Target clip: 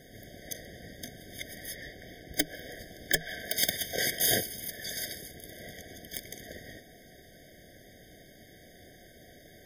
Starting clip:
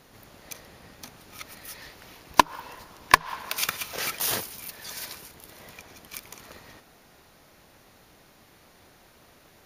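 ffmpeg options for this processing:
ffmpeg -i in.wav -filter_complex "[0:a]aeval=exprs='(mod(5.31*val(0)+1,2)-1)/5.31':channel_layout=same,asettb=1/sr,asplit=3[link_01][link_02][link_03];[link_01]atrim=end=1.754[link_04];[link_02]atrim=start=1.75:end=2.34,asetpts=PTS-STARTPTS,afade=type=in:duration=0.004:curve=qsin,afade=type=out:start_time=0.586:duration=0.004:curve=qsin,highshelf=frequency=4200:gain=-7.5[link_05];[link_03]atrim=start=2.336[link_06];[link_04][link_05]acrossfade=duration=0.004:curve1=hsin:curve2=qsin[link_07];[link_07][link_06]acrossfade=duration=0.004:curve1=qsin:curve2=hsin,afftfilt=real='re*eq(mod(floor(b*sr/1024/760),2),0)':imag='im*eq(mod(floor(b*sr/1024/760),2),0)':win_size=1024:overlap=0.75,volume=4dB" out.wav

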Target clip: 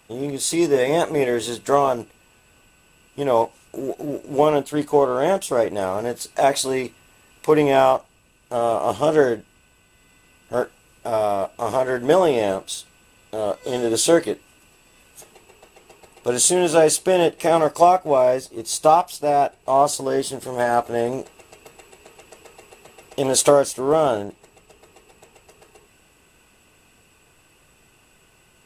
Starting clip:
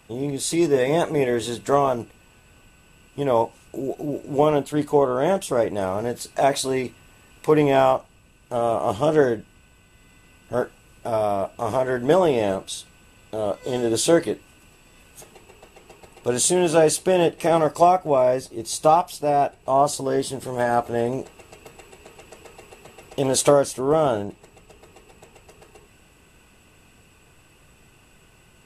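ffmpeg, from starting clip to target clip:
ffmpeg -i in.wav -filter_complex "[0:a]asplit=2[link_01][link_02];[link_02]aeval=exprs='sgn(val(0))*max(abs(val(0))-0.0178,0)':channel_layout=same,volume=-7dB[link_03];[link_01][link_03]amix=inputs=2:normalize=0,bass=frequency=250:gain=-5,treble=frequency=4000:gain=2,volume=-1dB" out.wav

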